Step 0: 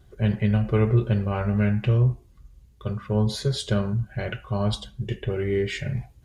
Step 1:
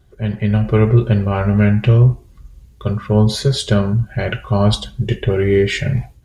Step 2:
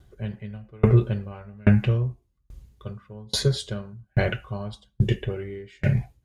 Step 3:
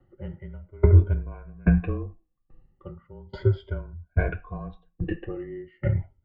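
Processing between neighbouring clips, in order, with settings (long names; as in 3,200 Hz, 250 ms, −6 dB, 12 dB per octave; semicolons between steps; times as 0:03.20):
automatic gain control gain up to 10 dB; level +1 dB
tremolo with a ramp in dB decaying 1.2 Hz, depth 35 dB
rippled gain that drifts along the octave scale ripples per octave 1.7, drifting +0.36 Hz, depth 18 dB; frequency shifter −31 Hz; Bessel low-pass filter 1,500 Hz, order 4; level −5 dB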